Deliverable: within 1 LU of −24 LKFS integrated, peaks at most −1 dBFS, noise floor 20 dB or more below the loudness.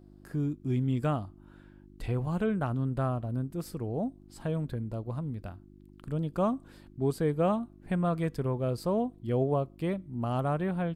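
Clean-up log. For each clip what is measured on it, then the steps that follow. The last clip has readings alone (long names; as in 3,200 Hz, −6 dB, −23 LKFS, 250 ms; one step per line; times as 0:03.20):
mains hum 50 Hz; hum harmonics up to 350 Hz; level of the hum −53 dBFS; integrated loudness −31.5 LKFS; sample peak −15.5 dBFS; target loudness −24.0 LKFS
→ hum removal 50 Hz, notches 7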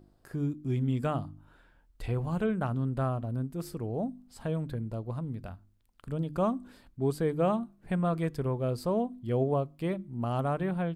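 mains hum none found; integrated loudness −32.0 LKFS; sample peak −16.0 dBFS; target loudness −24.0 LKFS
→ level +8 dB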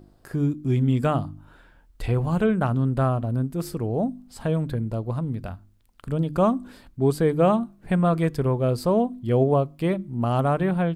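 integrated loudness −24.0 LKFS; sample peak −8.0 dBFS; background noise floor −56 dBFS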